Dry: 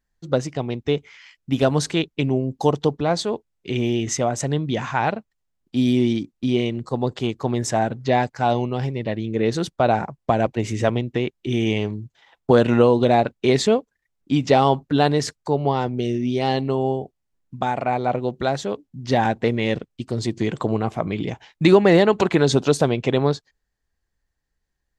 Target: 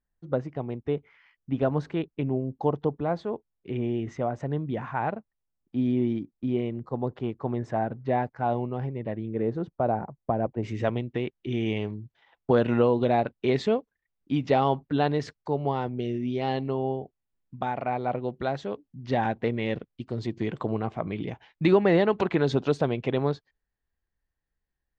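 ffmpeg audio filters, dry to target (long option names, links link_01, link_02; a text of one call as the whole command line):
ffmpeg -i in.wav -af "asetnsamples=nb_out_samples=441:pad=0,asendcmd='9.43 lowpass f 1000;10.63 lowpass f 3200',lowpass=1600,volume=-6.5dB" out.wav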